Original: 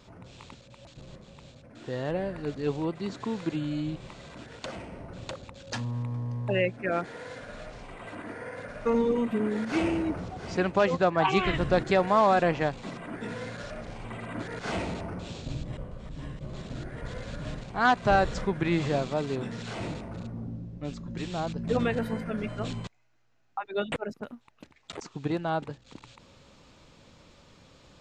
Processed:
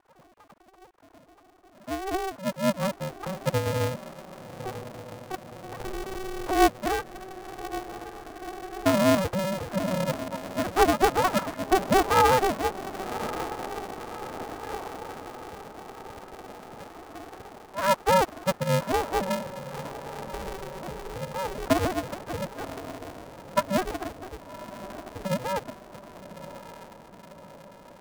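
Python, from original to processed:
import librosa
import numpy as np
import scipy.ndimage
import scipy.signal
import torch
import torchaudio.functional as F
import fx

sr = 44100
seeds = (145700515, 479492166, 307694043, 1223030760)

p1 = fx.sine_speech(x, sr)
p2 = scipy.signal.sosfilt(scipy.signal.butter(4, 1200.0, 'lowpass', fs=sr, output='sos'), p1)
p3 = p2 + fx.echo_diffused(p2, sr, ms=1136, feedback_pct=62, wet_db=-13.0, dry=0)
p4 = p3 * np.sign(np.sin(2.0 * np.pi * 190.0 * np.arange(len(p3)) / sr))
y = F.gain(torch.from_numpy(p4), 1.5).numpy()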